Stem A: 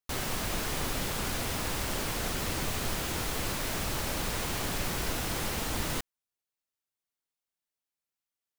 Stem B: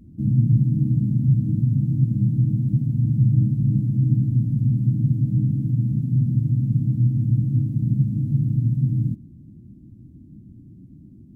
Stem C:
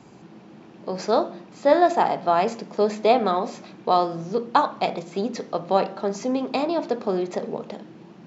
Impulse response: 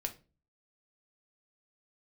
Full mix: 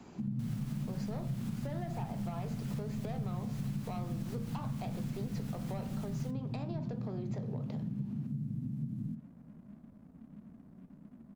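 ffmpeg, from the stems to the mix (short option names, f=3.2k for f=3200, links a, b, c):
-filter_complex "[0:a]alimiter=limit=-22.5dB:level=0:latency=1:release=195,adelay=300,volume=-4dB[a];[1:a]lowshelf=f=140:g=-10,aecho=1:1:4.7:0.65,aeval=exprs='sgn(val(0))*max(abs(val(0))-0.00126,0)':c=same,volume=-3dB,asplit=2[b][c];[c]volume=-6dB[d];[2:a]asoftclip=type=tanh:threshold=-15.5dB,volume=-1dB[e];[3:a]atrim=start_sample=2205[f];[d][f]afir=irnorm=-1:irlink=0[g];[a][b][e][g]amix=inputs=4:normalize=0,acrossover=split=190[h][i];[i]acompressor=threshold=-34dB:ratio=5[j];[h][j]amix=inputs=2:normalize=0,flanger=delay=9.5:depth=8.7:regen=79:speed=1:shape=triangular,acompressor=threshold=-36dB:ratio=2.5"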